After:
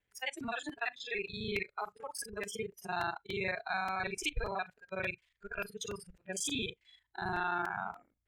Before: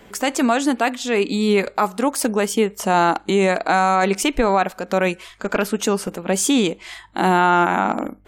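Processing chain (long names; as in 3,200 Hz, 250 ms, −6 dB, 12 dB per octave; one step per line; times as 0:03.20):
reversed piece by piece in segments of 37 ms
drawn EQ curve 120 Hz 0 dB, 160 Hz −14 dB, 640 Hz −11 dB, 1,200 Hz −12 dB, 1,800 Hz 0 dB, 9,800 Hz −8 dB, 15,000 Hz −12 dB
noise reduction from a noise print of the clip's start 23 dB
regular buffer underruns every 0.29 s, samples 128, repeat, from 0:00.40
level −8 dB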